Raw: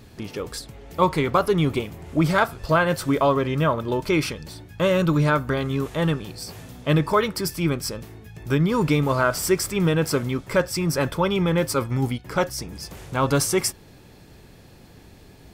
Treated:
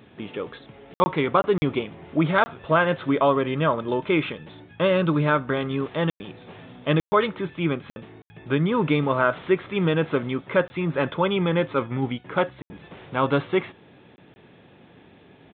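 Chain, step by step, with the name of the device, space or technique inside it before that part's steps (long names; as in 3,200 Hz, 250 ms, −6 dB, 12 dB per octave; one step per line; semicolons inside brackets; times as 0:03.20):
call with lost packets (high-pass filter 160 Hz 12 dB per octave; downsampling to 8,000 Hz; dropped packets of 20 ms bursts)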